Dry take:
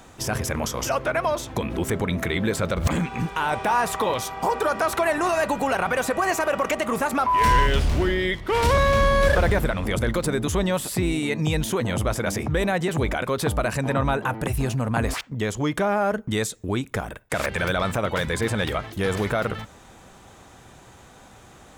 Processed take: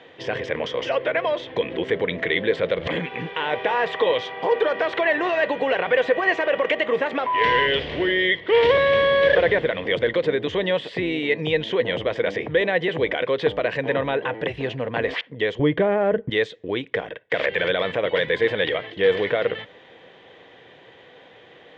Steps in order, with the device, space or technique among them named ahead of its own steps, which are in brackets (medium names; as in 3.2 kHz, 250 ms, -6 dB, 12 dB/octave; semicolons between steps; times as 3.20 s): kitchen radio (cabinet simulation 200–3600 Hz, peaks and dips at 220 Hz -8 dB, 480 Hz +10 dB, 840 Hz -4 dB, 1.3 kHz -9 dB, 1.9 kHz +9 dB, 3.2 kHz +9 dB); 15.59–16.30 s: RIAA curve playback